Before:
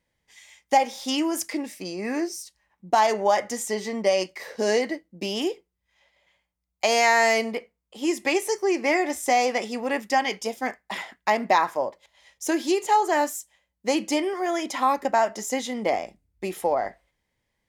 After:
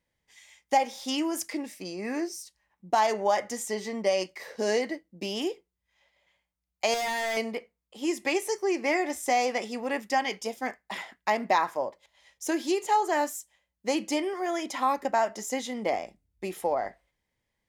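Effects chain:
0:06.94–0:07.37: hard clipping −23.5 dBFS, distortion −13 dB
level −4 dB

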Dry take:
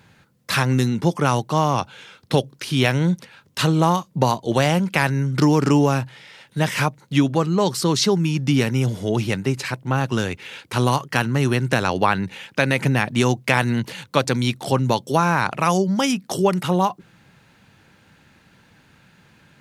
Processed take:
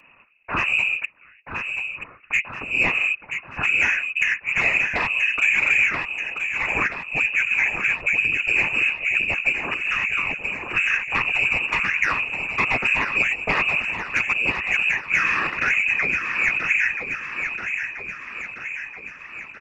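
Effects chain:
0:05.89–0:07.21: low-shelf EQ 380 Hz −8.5 dB
in parallel at −3 dB: downward compressor, threshold −26 dBFS, peak gain reduction 13.5 dB
on the sum: voice inversion scrambler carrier 2,700 Hz
0:01.05–0:02.32: gate with flip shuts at −20 dBFS, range −30 dB
soft clipping −6 dBFS, distortion −21 dB
on a send: repeating echo 981 ms, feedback 59%, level −7 dB
on the sum: random phases in short frames
level −4 dB

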